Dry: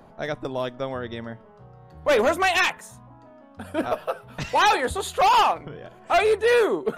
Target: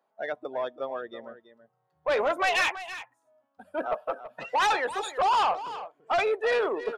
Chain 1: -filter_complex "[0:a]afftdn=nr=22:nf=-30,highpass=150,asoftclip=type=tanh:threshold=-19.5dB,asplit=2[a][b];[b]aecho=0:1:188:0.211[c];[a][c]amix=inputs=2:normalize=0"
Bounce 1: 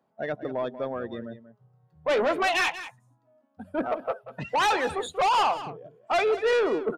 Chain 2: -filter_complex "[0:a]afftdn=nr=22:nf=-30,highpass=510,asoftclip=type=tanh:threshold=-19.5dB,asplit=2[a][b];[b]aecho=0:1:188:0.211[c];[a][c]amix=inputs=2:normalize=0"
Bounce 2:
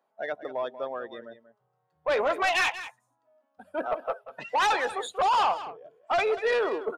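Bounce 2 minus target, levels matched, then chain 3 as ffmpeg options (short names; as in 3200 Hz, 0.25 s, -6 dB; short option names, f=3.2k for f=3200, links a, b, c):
echo 0.142 s early
-filter_complex "[0:a]afftdn=nr=22:nf=-30,highpass=510,asoftclip=type=tanh:threshold=-19.5dB,asplit=2[a][b];[b]aecho=0:1:330:0.211[c];[a][c]amix=inputs=2:normalize=0"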